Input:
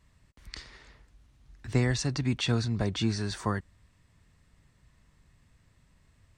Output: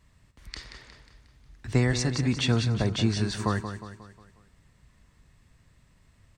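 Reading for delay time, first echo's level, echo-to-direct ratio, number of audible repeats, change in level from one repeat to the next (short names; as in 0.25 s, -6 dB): 0.18 s, -9.5 dB, -8.5 dB, 5, -6.5 dB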